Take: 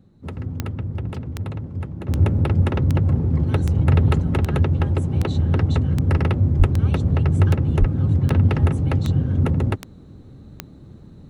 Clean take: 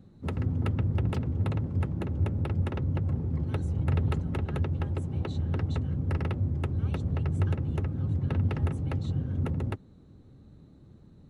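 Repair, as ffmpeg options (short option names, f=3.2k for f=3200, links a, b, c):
-filter_complex "[0:a]adeclick=t=4,asplit=3[a][b][c];[a]afade=t=out:st=6.58:d=0.02[d];[b]highpass=f=140:w=0.5412,highpass=f=140:w=1.3066,afade=t=in:st=6.58:d=0.02,afade=t=out:st=6.7:d=0.02[e];[c]afade=t=in:st=6.7:d=0.02[f];[d][e][f]amix=inputs=3:normalize=0,asplit=3[g][h][i];[g]afade=t=out:st=7.79:d=0.02[j];[h]highpass=f=140:w=0.5412,highpass=f=140:w=1.3066,afade=t=in:st=7.79:d=0.02,afade=t=out:st=7.91:d=0.02[k];[i]afade=t=in:st=7.91:d=0.02[l];[j][k][l]amix=inputs=3:normalize=0,asetnsamples=n=441:p=0,asendcmd='2.08 volume volume -10.5dB',volume=0dB"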